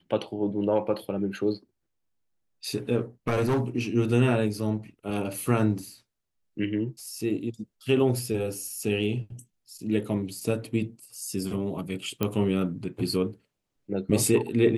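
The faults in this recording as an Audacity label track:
3.270000	3.600000	clipping −20 dBFS
12.230000	12.230000	click −12 dBFS

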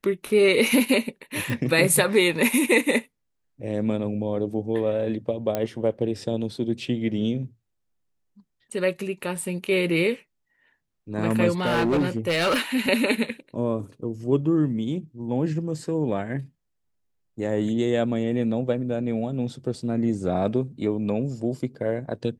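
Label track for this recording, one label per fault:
1.500000	1.500000	click
5.550000	5.550000	click −12 dBFS
11.600000	12.610000	clipping −18 dBFS

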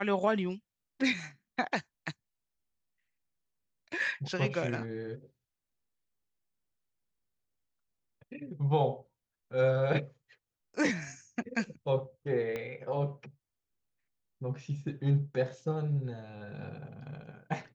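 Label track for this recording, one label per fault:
12.560000	12.560000	click −23 dBFS

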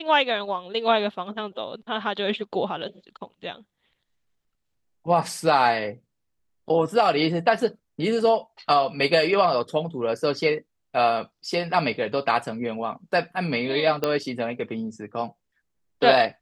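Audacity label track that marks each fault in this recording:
14.040000	14.040000	click −10 dBFS

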